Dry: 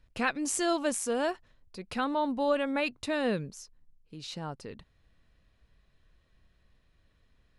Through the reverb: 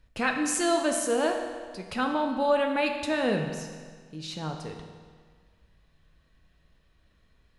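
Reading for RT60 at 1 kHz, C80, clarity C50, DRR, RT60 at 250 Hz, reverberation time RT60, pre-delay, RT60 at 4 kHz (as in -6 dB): 1.7 s, 7.0 dB, 5.5 dB, 3.0 dB, 1.7 s, 1.7 s, 6 ms, 1.5 s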